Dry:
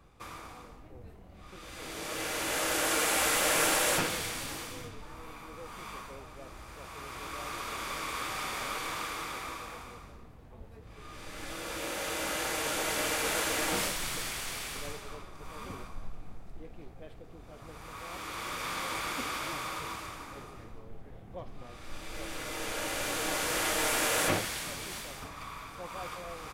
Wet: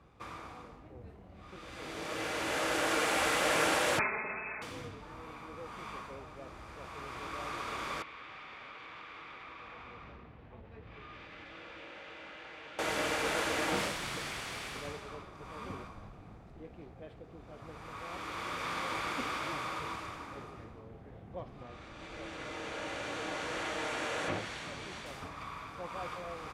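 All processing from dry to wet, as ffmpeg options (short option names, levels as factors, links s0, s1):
-filter_complex "[0:a]asettb=1/sr,asplit=3[s0][s1][s2];[s0]atrim=end=3.994[s3];[s1]atrim=start=3.99:end=4.62,asetpts=PTS-STARTPTS,afade=t=in:d=0.004:c=qsin,afade=t=out:st=0.626:d=0.004:c=qsin,aecho=1:1:4.6:0.73,atrim=end_sample=27783,lowpass=f=2200:t=q:w=0.5098,lowpass=f=2200:t=q:w=0.6013,lowpass=f=2200:t=q:w=0.9,lowpass=f=2200:t=q:w=2.563,afreqshift=-2600,aeval=exprs='val(0)+0.000891*(sin(2*PI*60*n/s)+sin(2*PI*2*60*n/s)/2+sin(2*PI*3*60*n/s)/3+sin(2*PI*4*60*n/s)/4+sin(2*PI*5*60*n/s)/5)':c=same[s4];[s2]atrim=start=4.616[s5];[s3][s4]acrossfade=d=0.004:c1=hsin:c2=qsin[s6];[s6][s5]acrossfade=d=0.004:c1=qsin:c2=hsin,asettb=1/sr,asplit=3[s7][s8][s9];[s7]atrim=end=8.024[s10];[s8]atrim=start=8.02:end=12.79,asetpts=PTS-STARTPTS,afade=t=in:d=0.004:c=qsin,afade=t=out:st=4.766:d=0.004:c=qsin,equalizer=f=2600:t=o:w=1.6:g=7,acompressor=threshold=0.00708:ratio=12:attack=3.2:release=140:knee=1:detection=peak,lowpass=3700[s11];[s9]atrim=start=12.786[s12];[s10][s11]acrossfade=d=0.004:c1=hsin:c2=qsin[s13];[s13][s12]acrossfade=d=0.004:c1=qsin:c2=hsin,asettb=1/sr,asplit=3[s14][s15][s16];[s14]atrim=end=21.634[s17];[s15]atrim=start=21.63:end=25.06,asetpts=PTS-STARTPTS,afade=t=in:d=0.004:c=qsin,afade=t=out:st=3.426:d=0.004:c=qsin,lowpass=7300,bandreject=f=5000:w=14,acompressor=threshold=0.01:ratio=1.5:attack=3.2:release=140:knee=1:detection=peak[s18];[s16]atrim=start=25.056[s19];[s17][s18]acrossfade=d=0.004:c1=hsin:c2=qsin[s20];[s20][s19]acrossfade=d=0.004:c1=qsin:c2=hsin,highpass=59,aemphasis=mode=reproduction:type=50fm"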